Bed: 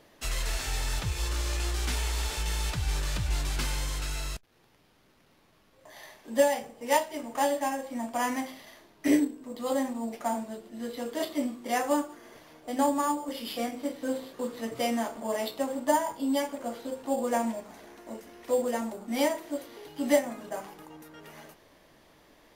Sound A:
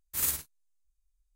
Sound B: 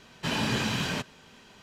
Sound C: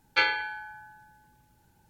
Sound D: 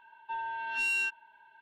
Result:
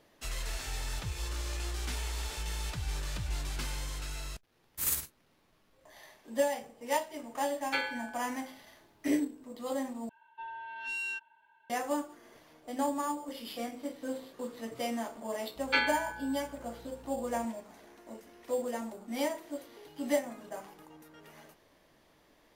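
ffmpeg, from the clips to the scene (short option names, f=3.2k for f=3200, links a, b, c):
-filter_complex "[3:a]asplit=2[a][b];[0:a]volume=-6dB[c];[b]aeval=exprs='val(0)+0.00355*(sin(2*PI*60*n/s)+sin(2*PI*2*60*n/s)/2+sin(2*PI*3*60*n/s)/3+sin(2*PI*4*60*n/s)/4+sin(2*PI*5*60*n/s)/5)':c=same[d];[c]asplit=2[e][f];[e]atrim=end=10.094[g];[4:a]atrim=end=1.61,asetpts=PTS-STARTPTS,volume=-6.5dB[h];[f]atrim=start=11.696[i];[1:a]atrim=end=1.35,asetpts=PTS-STARTPTS,volume=-2dB,afade=t=in:d=0.004:c=hsin,afade=t=out:st=1.346:d=0.004:c=hsin,adelay=4640[j];[a]atrim=end=1.89,asetpts=PTS-STARTPTS,volume=-9dB,afade=t=in:d=0.004:c=hsin,afade=t=out:st=1.886:d=0.004:c=hsin,adelay=7560[k];[d]atrim=end=1.89,asetpts=PTS-STARTPTS,volume=-4dB,afade=t=in:d=0.004:c=hsin,afade=t=out:st=1.886:d=0.004:c=hsin,adelay=686196S[l];[g][h]acrossfade=d=0.004:c1=hsin:c2=hsin[m];[m][i]acrossfade=d=0.004:c1=hsin:c2=hsin[n];[n][j][k][l]amix=inputs=4:normalize=0"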